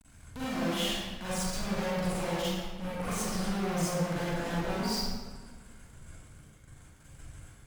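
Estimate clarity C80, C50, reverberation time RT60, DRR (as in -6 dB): -1.5 dB, -5.5 dB, 1.5 s, -11.0 dB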